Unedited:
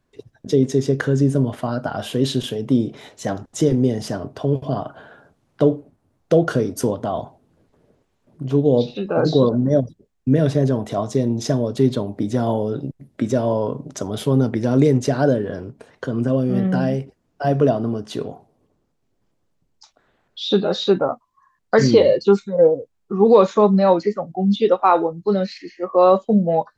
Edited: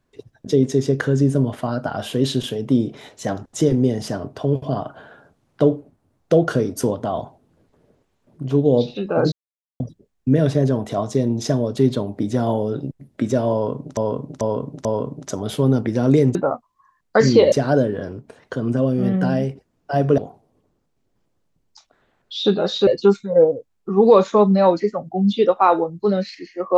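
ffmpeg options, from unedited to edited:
-filter_complex "[0:a]asplit=10[s0][s1][s2][s3][s4][s5][s6][s7][s8][s9];[s0]atrim=end=9.32,asetpts=PTS-STARTPTS,afade=t=out:st=9.316:d=0.004:c=hsin[s10];[s1]atrim=start=9.32:end=9.8,asetpts=PTS-STARTPTS,volume=0[s11];[s2]atrim=start=9.8:end=13.972,asetpts=PTS-STARTPTS,afade=t=in:d=0.004:c=hsin[s12];[s3]atrim=start=13.528:end=13.972[s13];[s4]atrim=start=13.528:end=13.972[s14];[s5]atrim=start=13.528:end=15.032[s15];[s6]atrim=start=20.928:end=22.102[s16];[s7]atrim=start=15.028:end=17.692[s17];[s8]atrim=start=18.238:end=20.932[s18];[s9]atrim=start=22.098[s19];[s10][s11][s12]concat=n=3:v=0:a=1[s20];[s20][s13]acrossfade=d=0.004:c1=hsin:c2=hsin[s21];[s21][s14]acrossfade=d=0.004:c1=hsin:c2=hsin[s22];[s22][s15]acrossfade=d=0.004:c1=hsin:c2=hsin[s23];[s23][s16]acrossfade=d=0.004:c1=hsin:c2=hsin[s24];[s24][s17]acrossfade=d=0.004:c1=hsin:c2=hsin[s25];[s25][s18]acrossfade=d=0.004:c1=hsin:c2=hsin[s26];[s26][s19]acrossfade=d=0.004:c1=hsin:c2=hsin"

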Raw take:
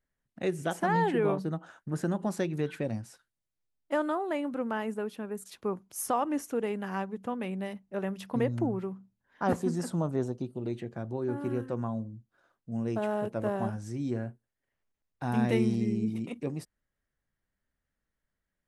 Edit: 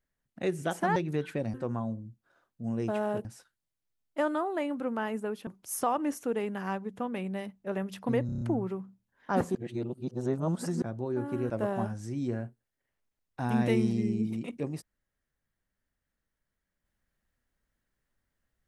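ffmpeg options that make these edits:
-filter_complex "[0:a]asplit=13[s0][s1][s2][s3][s4][s5][s6][s7][s8][s9][s10][s11][s12];[s0]atrim=end=0.962[s13];[s1]atrim=start=2.408:end=2.992[s14];[s2]atrim=start=11.618:end=13.332[s15];[s3]atrim=start=2.988:end=5.212[s16];[s4]atrim=start=5.738:end=8.562[s17];[s5]atrim=start=8.528:end=8.562[s18];[s6]atrim=start=8.528:end=8.562[s19];[s7]atrim=start=8.528:end=8.562[s20];[s8]atrim=start=8.528:end=8.562[s21];[s9]atrim=start=8.528:end=9.672[s22];[s10]atrim=start=9.668:end=10.942,asetpts=PTS-STARTPTS,areverse[s23];[s11]atrim=start=10.938:end=11.622[s24];[s12]atrim=start=13.328[s25];[s13][s14]acrossfade=d=0.004:c1=hsin:c2=hsin[s26];[s26][s15]acrossfade=d=0.004:c1=hsin:c2=hsin[s27];[s27][s16]acrossfade=d=0.004:c1=hsin:c2=hsin[s28];[s28][s17]acrossfade=d=0.004:c1=hsin:c2=hsin[s29];[s29][s18]acrossfade=d=0.004:c1=hsin:c2=hsin[s30];[s30][s19]acrossfade=d=0.004:c1=hsin:c2=hsin[s31];[s31][s20]acrossfade=d=0.004:c1=hsin:c2=hsin[s32];[s32][s21]acrossfade=d=0.004:c1=hsin:c2=hsin[s33];[s33][s22]acrossfade=d=0.004:c1=hsin:c2=hsin[s34];[s34][s23]acrossfade=d=0.004:c1=hsin:c2=hsin[s35];[s35][s24]acrossfade=d=0.004:c1=hsin:c2=hsin[s36];[s36][s25]acrossfade=d=0.004:c1=hsin:c2=hsin"

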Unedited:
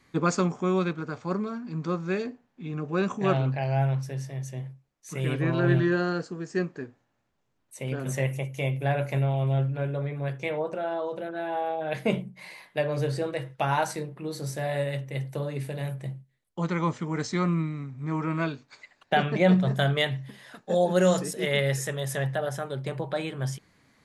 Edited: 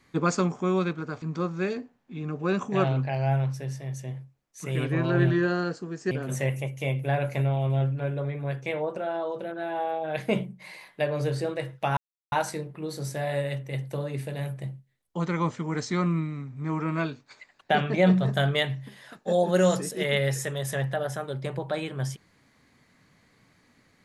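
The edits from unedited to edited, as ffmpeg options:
-filter_complex "[0:a]asplit=4[s0][s1][s2][s3];[s0]atrim=end=1.222[s4];[s1]atrim=start=1.708:end=6.602[s5];[s2]atrim=start=7.878:end=13.74,asetpts=PTS-STARTPTS,afade=t=out:st=5.858:d=0.004:c=hsin,apad=pad_dur=0.35[s6];[s3]atrim=start=13.74,asetpts=PTS-STARTPTS,afade=t=in:d=0.004:c=hsin[s7];[s4][s5]acrossfade=d=0.004:c1=hsin:c2=hsin[s8];[s6][s7]concat=n=2:v=0:a=1[s9];[s8][s9]acrossfade=d=0.004:c1=hsin:c2=hsin"

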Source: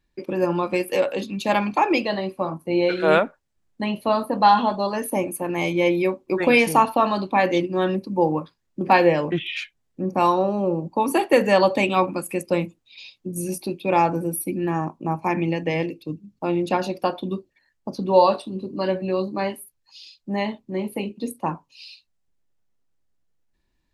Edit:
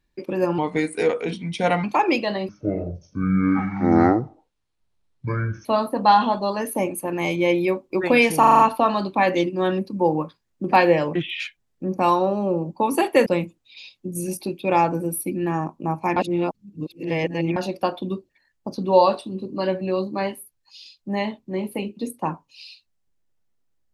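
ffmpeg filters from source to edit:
-filter_complex "[0:a]asplit=13[s0][s1][s2][s3][s4][s5][s6][s7][s8][s9][s10][s11][s12];[s0]atrim=end=0.584[s13];[s1]atrim=start=0.58:end=1.66,asetpts=PTS-STARTPTS,asetrate=37926,aresample=44100,atrim=end_sample=55381,asetpts=PTS-STARTPTS[s14];[s2]atrim=start=1.656:end=2.314[s15];[s3]atrim=start=2.31:end=4.02,asetpts=PTS-STARTPTS,asetrate=23814,aresample=44100[s16];[s4]atrim=start=4.016:end=6.802[s17];[s5]atrim=start=6.758:end=6.802[s18];[s6]atrim=start=6.758:end=6.802[s19];[s7]atrim=start=6.758:end=6.802[s20];[s8]atrim=start=6.758:end=6.802[s21];[s9]atrim=start=6.758:end=11.432[s22];[s10]atrim=start=12.468:end=15.372[s23];[s11]atrim=start=15.368:end=16.772,asetpts=PTS-STARTPTS,areverse[s24];[s12]atrim=start=16.768[s25];[s13][s14]acrossfade=d=0.004:c1=hsin:c2=hsin[s26];[s26][s15]acrossfade=d=0.004:c1=hsin:c2=hsin[s27];[s27][s16]acrossfade=d=0.004:c1=hsin:c2=hsin[s28];[s28][s17]acrossfade=d=0.004:c1=hsin:c2=hsin[s29];[s29][s18]acrossfade=d=0.004:c1=hsin:c2=hsin[s30];[s30][s19]acrossfade=d=0.004:c1=hsin:c2=hsin[s31];[s31][s20]acrossfade=d=0.004:c1=hsin:c2=hsin[s32];[s32][s21]acrossfade=d=0.004:c1=hsin:c2=hsin[s33];[s33][s22]acrossfade=d=0.004:c1=hsin:c2=hsin[s34];[s34][s23]acrossfade=d=0.004:c1=hsin:c2=hsin[s35];[s35][s24]acrossfade=d=0.004:c1=hsin:c2=hsin[s36];[s36][s25]acrossfade=d=0.004:c1=hsin:c2=hsin"

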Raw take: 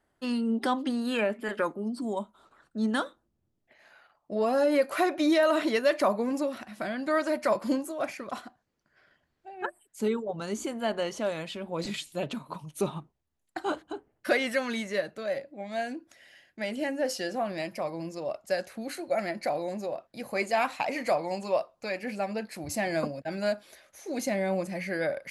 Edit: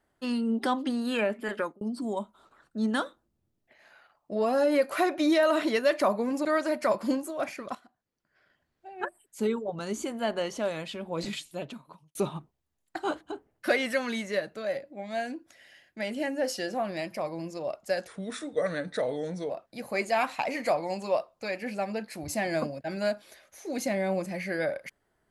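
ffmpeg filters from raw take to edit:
-filter_complex "[0:a]asplit=7[s0][s1][s2][s3][s4][s5][s6];[s0]atrim=end=1.81,asetpts=PTS-STARTPTS,afade=t=out:st=1.56:d=0.25[s7];[s1]atrim=start=1.81:end=6.452,asetpts=PTS-STARTPTS,afade=t=in:d=0.004:c=hsin[s8];[s2]atrim=start=7.058:end=8.36,asetpts=PTS-STARTPTS,afade=t=out:st=1.298:d=0.004:c=hsin:silence=0.16788[s9];[s3]atrim=start=8.36:end=12.76,asetpts=PTS-STARTPTS,afade=t=in:d=1.24:silence=0.16788,afade=t=out:st=3.51:d=0.89[s10];[s4]atrim=start=12.76:end=18.684,asetpts=PTS-STARTPTS,afade=t=in:d=0.004:c=hsin[s11];[s5]atrim=start=18.68:end=19.91,asetpts=PTS-STARTPTS,asetrate=37926,aresample=44100,atrim=end_sample=63073,asetpts=PTS-STARTPTS[s12];[s6]atrim=start=19.906[s13];[s7][s8]concat=n=2:v=0:a=1[s14];[s9][s10][s11]concat=n=3:v=0:a=1[s15];[s14][s15]acrossfade=d=0.004:c1=hsin:c2=hsin[s16];[s16][s12]acrossfade=d=0.004:c1=hsin:c2=hsin[s17];[s17][s13]acrossfade=d=0.004:c1=hsin:c2=hsin"

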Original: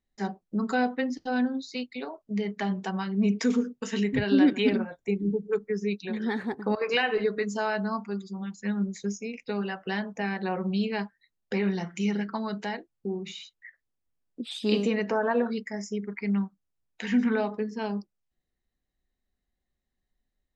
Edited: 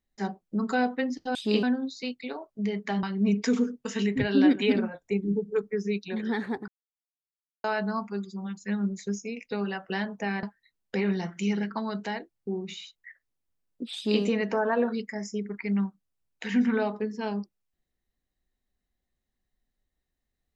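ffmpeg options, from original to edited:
-filter_complex "[0:a]asplit=7[s0][s1][s2][s3][s4][s5][s6];[s0]atrim=end=1.352[s7];[s1]atrim=start=14.528:end=14.812[s8];[s2]atrim=start=1.348:end=2.752[s9];[s3]atrim=start=2.998:end=6.65,asetpts=PTS-STARTPTS,afade=t=out:st=3.648:d=0.004:c=hsin[s10];[s4]atrim=start=6.65:end=7.61,asetpts=PTS-STARTPTS,volume=0[s11];[s5]atrim=start=7.61:end=10.402,asetpts=PTS-STARTPTS,afade=t=in:d=0.004:c=hsin[s12];[s6]atrim=start=11.008[s13];[s7][s8]acrossfade=d=0.004:c1=hsin:c2=hsin[s14];[s14][s9]acrossfade=d=0.004:c1=hsin:c2=hsin[s15];[s10][s11][s12]concat=n=3:v=0:a=1[s16];[s15][s16]acrossfade=d=0.004:c1=hsin:c2=hsin[s17];[s17][s13]acrossfade=d=0.004:c1=hsin:c2=hsin"

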